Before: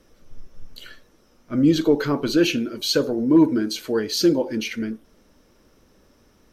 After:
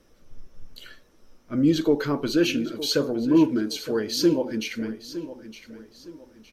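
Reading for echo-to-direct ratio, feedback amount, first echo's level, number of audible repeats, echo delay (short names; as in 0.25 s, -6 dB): -13.5 dB, 34%, -14.0 dB, 3, 0.912 s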